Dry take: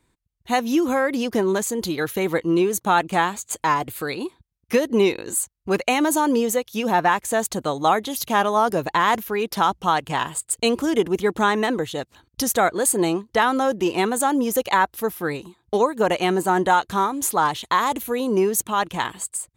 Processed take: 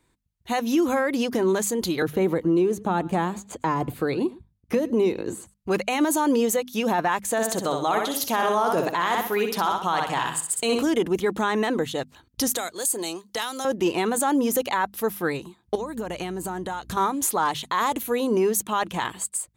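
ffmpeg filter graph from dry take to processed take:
-filter_complex "[0:a]asettb=1/sr,asplit=3[s0][s1][s2];[s0]atrim=end=2.024[s3];[s1]atrim=start=2.02:end=5.54,asetpts=PTS-STARTPTS,afade=t=in:d=0.004:c=qsin,afade=t=out:st=3.516:d=0.004:c=qsin,tiltshelf=f=1100:g=6.5,acrossover=split=350|5500[s4][s5][s6];[s4]acompressor=threshold=0.0708:ratio=4[s7];[s5]acompressor=threshold=0.0708:ratio=4[s8];[s6]acompressor=threshold=0.00501:ratio=4[s9];[s7][s8][s9]amix=inputs=3:normalize=0,aecho=1:1:110:0.0794,atrim=end_sample=155232[s10];[s2]atrim=start=5.536[s11];[s3][s10]acrossfade=d=0.004:c1=hsin:c2=qsin[s12];[s12][s11]acrossfade=d=0.004:c1=qsin:c2=hsin,asettb=1/sr,asplit=3[s13][s14][s15];[s13]atrim=end=7.314[s16];[s14]atrim=start=7.31:end=10.83,asetpts=PTS-STARTPTS,afade=t=in:d=0.004:c=qsin,afade=t=out:st=3.516:d=0.004:c=qsin,lowshelf=f=89:g=-10.5,aecho=1:1:63|126|189|252|315:0.501|0.19|0.0724|0.0275|0.0105,atrim=end_sample=155232[s17];[s15]atrim=start=10.826[s18];[s16][s17]acrossfade=d=0.004:c1=hsin:c2=qsin[s19];[s19][s18]acrossfade=d=0.004:c1=qsin:c2=hsin,asettb=1/sr,asplit=3[s20][s21][s22];[s20]atrim=end=12.504[s23];[s21]atrim=start=12.5:end=13.65,asetpts=PTS-STARTPTS,afade=t=in:d=0.004:c=qsin,afade=t=out:st=1.146:d=0.004:c=qsin,bass=f=250:g=-8,treble=f=4000:g=7,acrossover=split=150|3100[s24][s25][s26];[s24]acompressor=threshold=0.00158:ratio=4[s27];[s25]acompressor=threshold=0.0282:ratio=4[s28];[s26]acompressor=threshold=0.141:ratio=4[s29];[s27][s28][s29]amix=inputs=3:normalize=0[s30];[s22]atrim=start=13.646[s31];[s23][s30]acrossfade=d=0.004:c1=hsin:c2=qsin[s32];[s32][s31]acrossfade=d=0.004:c1=qsin:c2=hsin,asettb=1/sr,asplit=3[s33][s34][s35];[s33]atrim=end=15.754[s36];[s34]atrim=start=15.75:end=16.97,asetpts=PTS-STARTPTS,afade=t=in:d=0.004:c=qsin,afade=t=out:st=1.216:d=0.004:c=qsin,bass=f=250:g=7,treble=f=4000:g=4,acompressor=threshold=0.0501:ratio=16:attack=3.2:release=140:knee=1:detection=peak,aeval=exprs='val(0)+0.00355*(sin(2*PI*60*n/s)+sin(2*PI*2*60*n/s)/2+sin(2*PI*3*60*n/s)/3+sin(2*PI*4*60*n/s)/4+sin(2*PI*5*60*n/s)/5)':c=same[s37];[s35]atrim=start=16.966[s38];[s36][s37]acrossfade=d=0.004:c1=hsin:c2=qsin[s39];[s39][s38]acrossfade=d=0.004:c1=qsin:c2=hsin,bandreject=f=50:t=h:w=6,bandreject=f=100:t=h:w=6,bandreject=f=150:t=h:w=6,bandreject=f=200:t=h:w=6,bandreject=f=250:t=h:w=6,alimiter=limit=0.211:level=0:latency=1:release=20"

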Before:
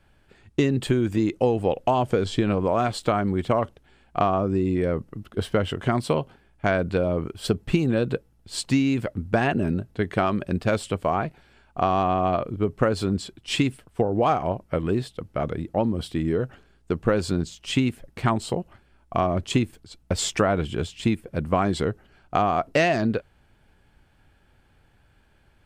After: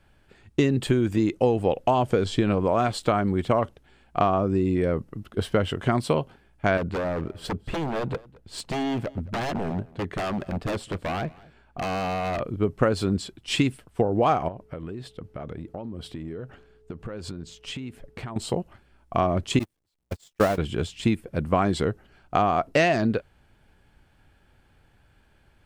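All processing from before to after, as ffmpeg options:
-filter_complex "[0:a]asettb=1/sr,asplit=3[s0][s1][s2];[s0]atrim=end=6.774[s3];[s1]atrim=start=6.77:end=12.4,asetpts=PTS-STARTPTS,afade=t=in:d=0.004:c=qsin,afade=t=out:st=5.626:d=0.004:c=qsin,aeval=exprs='0.0841*(abs(mod(val(0)/0.0841+3,4)-2)-1)':c=same,highshelf=f=2900:g=-8,aecho=1:1:218:0.0708,atrim=end_sample=248283[s4];[s2]atrim=start=12.396[s5];[s3][s4]acrossfade=d=0.004:c1=hsin:c2=qsin[s6];[s6][s5]acrossfade=d=0.004:c1=qsin:c2=hsin,asettb=1/sr,asplit=3[s7][s8][s9];[s7]atrim=end=14.484[s10];[s8]atrim=start=14.48:end=18.36,asetpts=PTS-STARTPTS,afade=t=in:d=0.004:c=qsin,afade=t=out:st=3.876:d=0.004:c=qsin,highshelf=f=4800:g=-7,acompressor=threshold=0.0282:ratio=10:attack=3.2:release=140:knee=1:detection=peak,aeval=exprs='val(0)+0.00141*sin(2*PI*430*n/s)':c=same[s11];[s9]atrim=start=18.356[s12];[s10][s11]acrossfade=d=0.004:c1=hsin:c2=qsin[s13];[s13][s12]acrossfade=d=0.004:c1=qsin:c2=hsin,asettb=1/sr,asplit=3[s14][s15][s16];[s14]atrim=end=19.594[s17];[s15]atrim=start=19.59:end=20.58,asetpts=PTS-STARTPTS,afade=t=in:d=0.004:c=qsin,afade=t=out:st=0.986:d=0.004:c=qsin,aeval=exprs='val(0)+0.5*0.0841*sgn(val(0))':c=same,agate=range=0.00251:threshold=0.126:ratio=16:release=100:detection=peak,equalizer=f=1400:t=o:w=0.32:g=-3[s18];[s16]atrim=start=20.576[s19];[s17][s18]acrossfade=d=0.004:c1=hsin:c2=qsin[s20];[s20][s19]acrossfade=d=0.004:c1=qsin:c2=hsin"

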